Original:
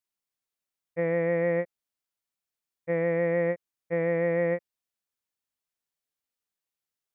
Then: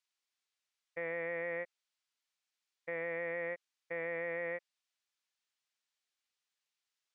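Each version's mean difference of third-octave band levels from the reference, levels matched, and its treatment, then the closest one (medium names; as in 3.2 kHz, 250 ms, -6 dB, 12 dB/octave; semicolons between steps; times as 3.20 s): 4.0 dB: high-pass 1.5 kHz 6 dB/octave; treble shelf 2 kHz +5 dB; peak limiter -33 dBFS, peak gain reduction 9.5 dB; distance through air 91 m; trim +4.5 dB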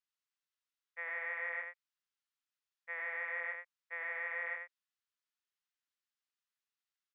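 9.5 dB: high-pass 1.1 kHz 24 dB/octave; distance through air 92 m; band-stop 2.3 kHz, Q 19; on a send: delay 87 ms -5 dB; on the sum: trim -1 dB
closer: first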